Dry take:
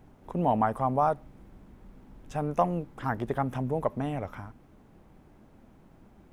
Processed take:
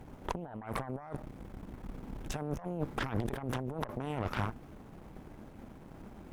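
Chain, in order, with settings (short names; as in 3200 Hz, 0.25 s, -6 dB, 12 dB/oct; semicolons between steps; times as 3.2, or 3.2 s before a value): negative-ratio compressor -38 dBFS, ratio -1; added harmonics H 8 -14 dB, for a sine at -16.5 dBFS; gain -2 dB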